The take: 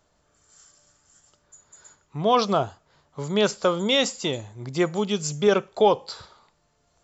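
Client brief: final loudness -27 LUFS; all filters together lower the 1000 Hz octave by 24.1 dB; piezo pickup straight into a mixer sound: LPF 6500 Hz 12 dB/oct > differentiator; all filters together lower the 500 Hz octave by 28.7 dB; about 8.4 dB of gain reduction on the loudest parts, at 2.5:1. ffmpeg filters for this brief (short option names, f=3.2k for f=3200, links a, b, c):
-af "equalizer=f=500:t=o:g=-5,equalizer=f=1k:t=o:g=-7,acompressor=threshold=-31dB:ratio=2.5,lowpass=6.5k,aderivative,volume=17dB"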